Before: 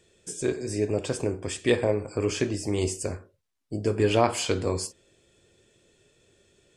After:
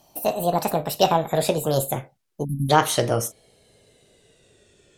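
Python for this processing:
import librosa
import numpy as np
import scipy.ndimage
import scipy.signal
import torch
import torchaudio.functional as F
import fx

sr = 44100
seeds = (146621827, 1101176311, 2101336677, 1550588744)

y = fx.speed_glide(x, sr, from_pct=173, to_pct=99)
y = fx.spec_erase(y, sr, start_s=2.44, length_s=0.26, low_hz=290.0, high_hz=10000.0)
y = y * 10.0 ** (5.0 / 20.0)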